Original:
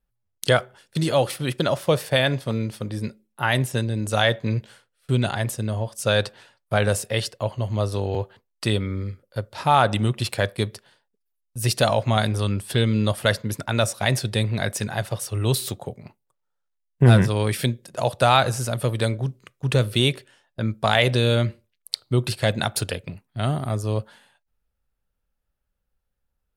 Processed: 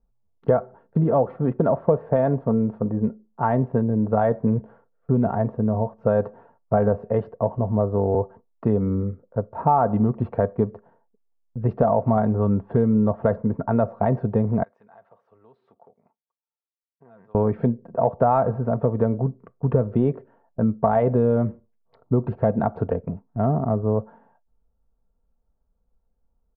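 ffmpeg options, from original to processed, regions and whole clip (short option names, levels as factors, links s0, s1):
-filter_complex "[0:a]asettb=1/sr,asplit=3[s0][s1][s2];[s0]atrim=end=14.634[s3];[s1]atrim=start=14.63:end=17.35,asetpts=PTS-STARTPTS,afade=t=in:d=0.004:c=qsin,afade=t=out:st=2.716:d=0.004:c=qsin,acompressor=threshold=0.0355:ratio=3:attack=3.2:release=140:knee=1:detection=peak,aderivative[s4];[s2]atrim=start=17.346[s5];[s3][s4]acrossfade=d=0.004:c1=hsin:c2=qsin[s6];[s6][s5]acrossfade=d=0.004:c1=qsin:c2=hsin,lowpass=f=1000:w=0.5412,lowpass=f=1000:w=1.3066,aecho=1:1:4.4:0.46,acompressor=threshold=0.0794:ratio=3,volume=2"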